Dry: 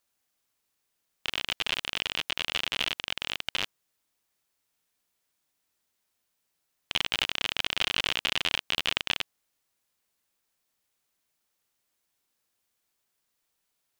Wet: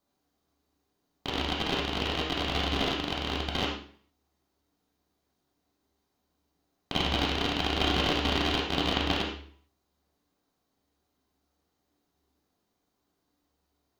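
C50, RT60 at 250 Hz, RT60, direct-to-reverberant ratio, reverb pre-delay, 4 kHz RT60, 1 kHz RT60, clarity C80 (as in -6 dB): 3.5 dB, 0.55 s, 0.50 s, -3.0 dB, 3 ms, 0.45 s, 0.50 s, 7.0 dB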